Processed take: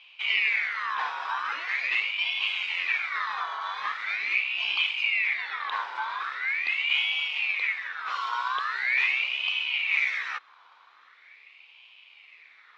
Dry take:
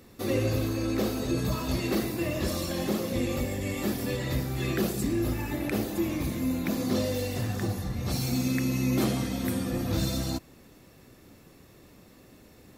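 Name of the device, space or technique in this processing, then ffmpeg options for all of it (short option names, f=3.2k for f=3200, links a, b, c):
voice changer toy: -af "aeval=exprs='val(0)*sin(2*PI*2000*n/s+2000*0.4/0.42*sin(2*PI*0.42*n/s))':c=same,highpass=590,equalizer=f=610:t=q:w=4:g=-5,equalizer=f=1.1k:t=q:w=4:g=5,equalizer=f=1.6k:t=q:w=4:g=-5,equalizer=f=2.3k:t=q:w=4:g=7,equalizer=f=3.7k:t=q:w=4:g=6,lowpass=f=4.2k:w=0.5412,lowpass=f=4.2k:w=1.3066"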